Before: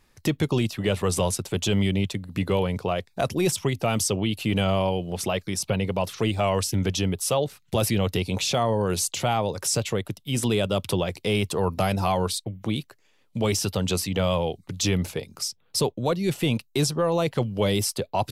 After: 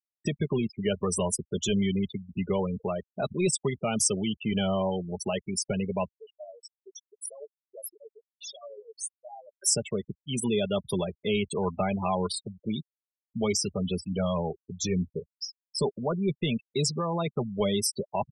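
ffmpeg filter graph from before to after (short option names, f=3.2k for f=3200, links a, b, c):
-filter_complex "[0:a]asettb=1/sr,asplit=3[a][b][c];[a]atrim=end=6.184[d];[b]atrim=start=6.18:end=9.61,asetpts=PTS-STARTPTS,afade=t=in:d=0.004:c=qsin,afade=t=out:st=3.426:d=0.004:c=qsin,highpass=530,equalizer=f=1k:t=o:w=2.7:g=-10,flanger=delay=1.6:depth=5.2:regen=57:speed=1.2:shape=sinusoidal[e];[c]atrim=start=9.606[f];[d][e]acrossfade=d=0.004:c1=hsin:c2=qsin[g];[g][f]acrossfade=d=0.004:c1=qsin:c2=hsin,asettb=1/sr,asplit=3[h][i][j];[h]atrim=end=13.694[k];[i]atrim=start=13.69:end=16.17,asetpts=PTS-STARTPTS,afade=t=in:d=0.004:c=qsin,afade=t=out:st=2.476:d=0.004:c=qsin,highshelf=f=2.4k:g=-4.5,asplit=2[l][m];[m]adelay=12,volume=-13.5dB[n];[l][n]amix=inputs=2:normalize=0,atrim=end_sample=109368[o];[j]atrim=start=16.166[p];[k][o]acrossfade=d=0.004:c1=hsin:c2=qsin[q];[q][p]acrossfade=d=0.004:c1=qsin:c2=hsin,afftfilt=real='re*gte(hypot(re,im),0.0708)':imag='im*gte(hypot(re,im),0.0708)':win_size=1024:overlap=0.75,highshelf=f=6.2k:g=11,aecho=1:1:4.9:0.53,volume=-5dB"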